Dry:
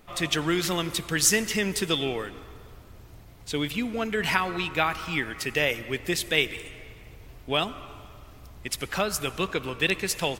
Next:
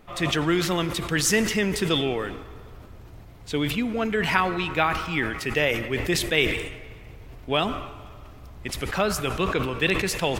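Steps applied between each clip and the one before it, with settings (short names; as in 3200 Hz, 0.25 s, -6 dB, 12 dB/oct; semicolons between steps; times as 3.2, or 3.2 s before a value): high shelf 3600 Hz -8 dB; sustainer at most 57 dB/s; gain +3 dB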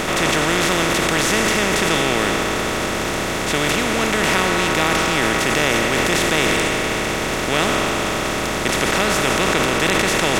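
per-bin compression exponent 0.2; gain -4 dB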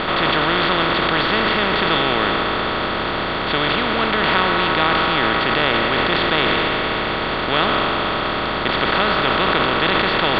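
rippled Chebyshev low-pass 4600 Hz, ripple 6 dB; gain +4 dB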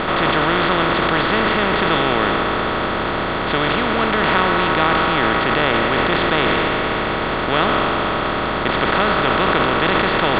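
air absorption 260 m; gain +2.5 dB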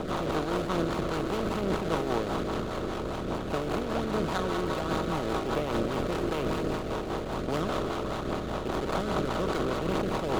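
median filter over 25 samples; rotary speaker horn 5 Hz; phaser 1.2 Hz, delay 2.9 ms, feedback 22%; gain -7.5 dB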